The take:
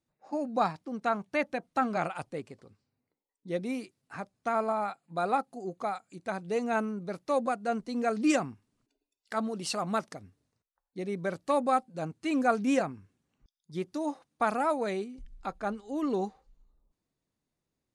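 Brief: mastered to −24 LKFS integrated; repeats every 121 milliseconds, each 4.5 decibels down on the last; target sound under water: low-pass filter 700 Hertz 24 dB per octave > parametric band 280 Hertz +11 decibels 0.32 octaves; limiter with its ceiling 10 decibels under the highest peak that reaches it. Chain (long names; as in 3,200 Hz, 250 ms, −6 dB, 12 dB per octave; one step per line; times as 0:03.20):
brickwall limiter −23 dBFS
low-pass filter 700 Hz 24 dB per octave
parametric band 280 Hz +11 dB 0.32 octaves
repeating echo 121 ms, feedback 60%, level −4.5 dB
level +6.5 dB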